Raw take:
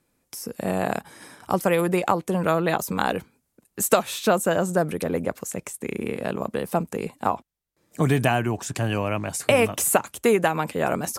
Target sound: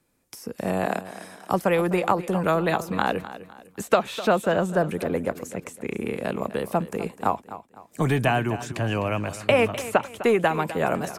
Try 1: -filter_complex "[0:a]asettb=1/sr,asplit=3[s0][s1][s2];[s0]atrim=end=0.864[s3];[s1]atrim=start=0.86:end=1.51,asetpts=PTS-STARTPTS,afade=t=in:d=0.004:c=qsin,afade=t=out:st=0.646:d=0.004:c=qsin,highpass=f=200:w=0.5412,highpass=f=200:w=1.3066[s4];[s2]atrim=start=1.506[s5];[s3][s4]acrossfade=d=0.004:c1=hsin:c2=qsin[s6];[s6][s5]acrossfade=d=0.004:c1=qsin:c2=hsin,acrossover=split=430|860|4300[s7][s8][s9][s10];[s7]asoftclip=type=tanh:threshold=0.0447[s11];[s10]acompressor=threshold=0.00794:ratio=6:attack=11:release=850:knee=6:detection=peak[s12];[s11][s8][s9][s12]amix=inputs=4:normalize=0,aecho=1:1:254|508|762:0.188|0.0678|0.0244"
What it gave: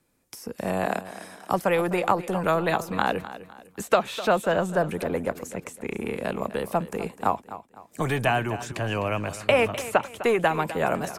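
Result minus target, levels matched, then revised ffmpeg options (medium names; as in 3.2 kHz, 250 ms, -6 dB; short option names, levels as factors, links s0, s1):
saturation: distortion +9 dB
-filter_complex "[0:a]asettb=1/sr,asplit=3[s0][s1][s2];[s0]atrim=end=0.864[s3];[s1]atrim=start=0.86:end=1.51,asetpts=PTS-STARTPTS,afade=t=in:d=0.004:c=qsin,afade=t=out:st=0.646:d=0.004:c=qsin,highpass=f=200:w=0.5412,highpass=f=200:w=1.3066[s4];[s2]atrim=start=1.506[s5];[s3][s4]acrossfade=d=0.004:c1=hsin:c2=qsin[s6];[s6][s5]acrossfade=d=0.004:c1=qsin:c2=hsin,acrossover=split=430|860|4300[s7][s8][s9][s10];[s7]asoftclip=type=tanh:threshold=0.133[s11];[s10]acompressor=threshold=0.00794:ratio=6:attack=11:release=850:knee=6:detection=peak[s12];[s11][s8][s9][s12]amix=inputs=4:normalize=0,aecho=1:1:254|508|762:0.188|0.0678|0.0244"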